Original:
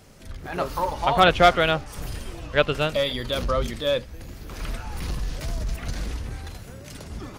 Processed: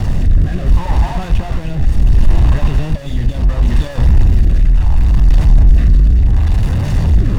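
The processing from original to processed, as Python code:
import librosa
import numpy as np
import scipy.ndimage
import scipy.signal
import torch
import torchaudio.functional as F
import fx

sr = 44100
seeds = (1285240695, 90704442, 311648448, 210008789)

y = np.sign(x) * np.sqrt(np.mean(np.square(x)))
y = fx.riaa(y, sr, side='playback')
y = y + 0.43 * np.pad(y, (int(1.1 * sr / 1000.0), 0))[:len(y)]
y = np.sign(y) * np.maximum(np.abs(y) - 10.0 ** (-30.5 / 20.0), 0.0)
y = fx.rotary(y, sr, hz=0.7)
y = y * librosa.db_to_amplitude(1.5)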